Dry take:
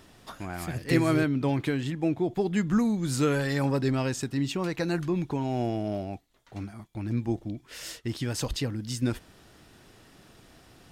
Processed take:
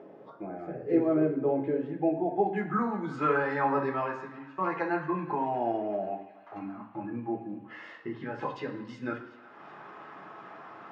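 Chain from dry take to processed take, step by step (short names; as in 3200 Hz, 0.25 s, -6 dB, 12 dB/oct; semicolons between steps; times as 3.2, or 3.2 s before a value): weighting filter A; spectral noise reduction 11 dB; 6.75–8.42 bell 7800 Hz -15 dB 2.2 oct; upward compressor, threshold -33 dBFS; low-pass sweep 510 Hz -> 1100 Hz, 1.63–2.85; 3.82–4.58 fade out; narrowing echo 0.373 s, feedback 78%, band-pass 2900 Hz, level -17 dB; reverb RT60 1.0 s, pre-delay 3 ms, DRR -2 dB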